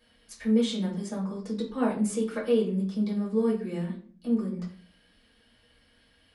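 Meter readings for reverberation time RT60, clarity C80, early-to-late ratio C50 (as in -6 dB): 0.45 s, 12.5 dB, 8.5 dB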